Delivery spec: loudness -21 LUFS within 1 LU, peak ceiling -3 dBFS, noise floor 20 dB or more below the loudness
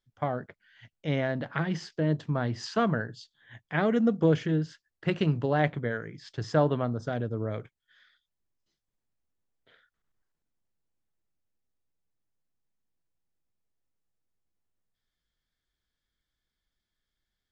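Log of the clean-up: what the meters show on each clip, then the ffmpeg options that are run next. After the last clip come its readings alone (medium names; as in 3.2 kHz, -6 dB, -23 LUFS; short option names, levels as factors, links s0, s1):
loudness -29.0 LUFS; peak level -10.0 dBFS; loudness target -21.0 LUFS
-> -af "volume=2.51,alimiter=limit=0.708:level=0:latency=1"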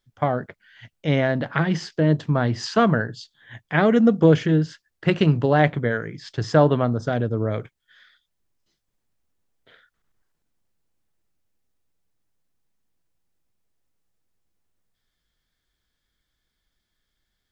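loudness -21.0 LUFS; peak level -3.0 dBFS; noise floor -78 dBFS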